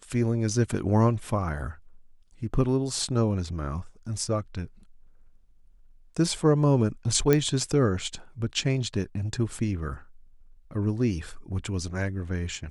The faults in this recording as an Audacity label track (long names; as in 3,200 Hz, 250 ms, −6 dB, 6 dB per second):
7.330000	7.330000	click −8 dBFS